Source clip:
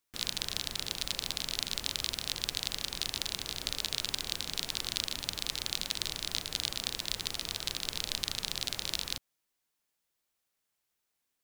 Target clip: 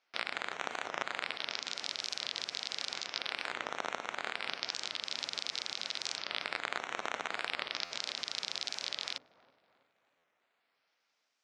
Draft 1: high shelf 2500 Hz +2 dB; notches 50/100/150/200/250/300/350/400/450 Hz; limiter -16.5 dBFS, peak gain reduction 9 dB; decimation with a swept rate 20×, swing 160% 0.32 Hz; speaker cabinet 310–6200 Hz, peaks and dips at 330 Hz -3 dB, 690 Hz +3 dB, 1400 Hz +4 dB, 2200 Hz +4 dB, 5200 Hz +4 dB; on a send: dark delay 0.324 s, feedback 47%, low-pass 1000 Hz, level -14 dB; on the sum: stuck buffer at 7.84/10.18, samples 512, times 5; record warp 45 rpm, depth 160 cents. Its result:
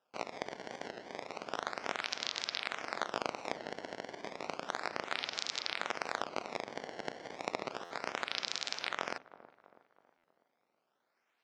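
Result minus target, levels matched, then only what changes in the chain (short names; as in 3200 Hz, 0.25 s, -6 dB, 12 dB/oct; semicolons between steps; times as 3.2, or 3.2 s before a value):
decimation with a swept rate: distortion +10 dB
change: decimation with a swept rate 5×, swing 160% 0.32 Hz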